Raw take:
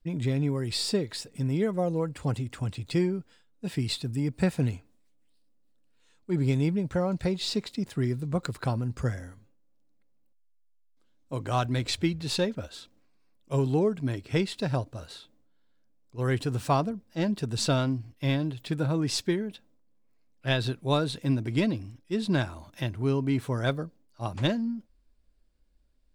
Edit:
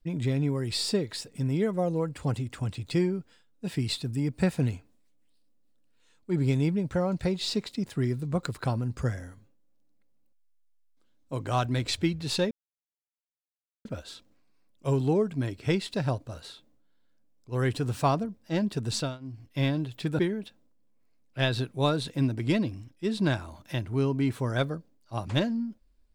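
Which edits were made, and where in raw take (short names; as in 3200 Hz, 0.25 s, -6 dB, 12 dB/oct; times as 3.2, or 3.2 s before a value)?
12.51 insert silence 1.34 s
17.56–18.14 dip -22 dB, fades 0.28 s
18.85–19.27 cut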